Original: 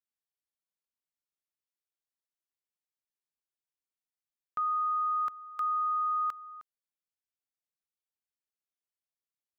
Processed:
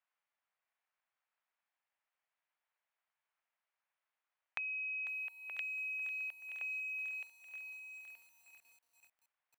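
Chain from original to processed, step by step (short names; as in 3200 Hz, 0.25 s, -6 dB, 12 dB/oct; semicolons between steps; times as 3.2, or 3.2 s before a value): dynamic EQ 930 Hz, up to -3 dB, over -44 dBFS, Q 0.91; LPF 1200 Hz 12 dB/oct; ring modulator 1300 Hz; HPF 630 Hz 24 dB/oct; on a send: feedback echo 0.925 s, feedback 18%, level -12 dB; on the sum: compressor 10:1, threshold -57 dBFS, peak gain reduction 16.5 dB; lo-fi delay 0.497 s, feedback 80%, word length 12-bit, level -14 dB; gain +17.5 dB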